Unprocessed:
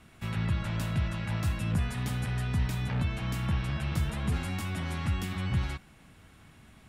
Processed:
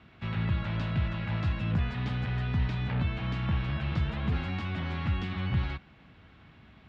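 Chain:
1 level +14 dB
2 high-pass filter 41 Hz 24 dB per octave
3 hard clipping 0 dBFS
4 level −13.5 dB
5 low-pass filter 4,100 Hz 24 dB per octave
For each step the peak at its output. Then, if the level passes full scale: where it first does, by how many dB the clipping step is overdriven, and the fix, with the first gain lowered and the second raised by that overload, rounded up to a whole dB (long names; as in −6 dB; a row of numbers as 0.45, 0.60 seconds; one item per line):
−4.0, −3.5, −3.5, −17.0, −17.5 dBFS
no step passes full scale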